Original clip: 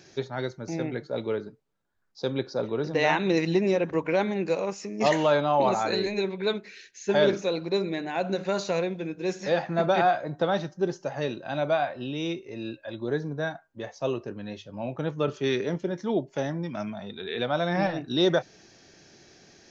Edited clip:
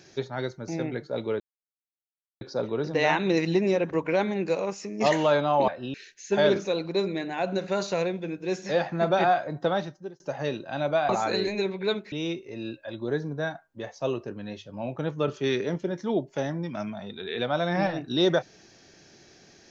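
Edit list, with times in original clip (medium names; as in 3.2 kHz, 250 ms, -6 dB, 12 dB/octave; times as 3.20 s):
1.40–2.41 s: mute
5.68–6.71 s: swap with 11.86–12.12 s
10.47–10.97 s: fade out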